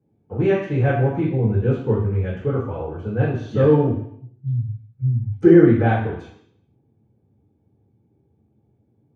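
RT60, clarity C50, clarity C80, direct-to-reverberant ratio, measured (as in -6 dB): 0.70 s, 5.0 dB, 8.0 dB, -10.5 dB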